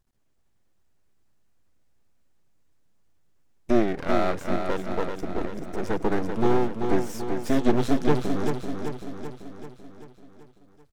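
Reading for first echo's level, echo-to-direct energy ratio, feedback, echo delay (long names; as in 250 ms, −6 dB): −6.0 dB, −4.5 dB, 57%, 386 ms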